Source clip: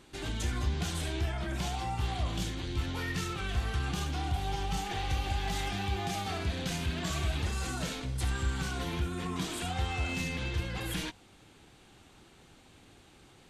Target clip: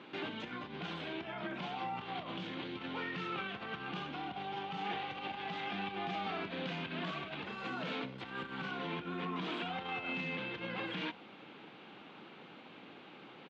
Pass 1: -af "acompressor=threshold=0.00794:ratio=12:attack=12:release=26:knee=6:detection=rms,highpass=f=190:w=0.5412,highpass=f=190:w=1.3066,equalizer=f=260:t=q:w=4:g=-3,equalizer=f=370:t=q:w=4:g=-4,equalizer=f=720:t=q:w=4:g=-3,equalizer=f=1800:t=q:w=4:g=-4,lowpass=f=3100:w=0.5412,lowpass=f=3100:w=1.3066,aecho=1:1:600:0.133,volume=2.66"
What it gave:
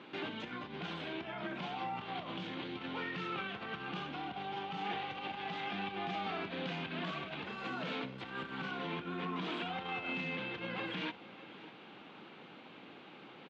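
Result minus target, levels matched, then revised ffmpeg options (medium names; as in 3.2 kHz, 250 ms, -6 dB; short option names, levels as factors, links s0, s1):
echo-to-direct +12 dB
-af "acompressor=threshold=0.00794:ratio=12:attack=12:release=26:knee=6:detection=rms,highpass=f=190:w=0.5412,highpass=f=190:w=1.3066,equalizer=f=260:t=q:w=4:g=-3,equalizer=f=370:t=q:w=4:g=-4,equalizer=f=720:t=q:w=4:g=-3,equalizer=f=1800:t=q:w=4:g=-4,lowpass=f=3100:w=0.5412,lowpass=f=3100:w=1.3066,aecho=1:1:600:0.0335,volume=2.66"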